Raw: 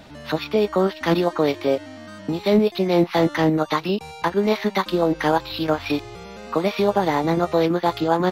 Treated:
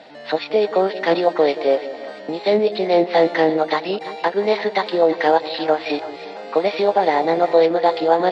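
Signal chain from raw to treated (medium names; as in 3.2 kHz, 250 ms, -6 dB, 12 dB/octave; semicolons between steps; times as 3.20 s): cabinet simulation 310–6900 Hz, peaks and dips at 490 Hz +7 dB, 730 Hz +8 dB, 1.2 kHz -5 dB, 1.9 kHz +5 dB, 4.3 kHz +4 dB, 6.2 kHz -9 dB; on a send: two-band feedback delay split 670 Hz, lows 176 ms, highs 336 ms, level -13.5 dB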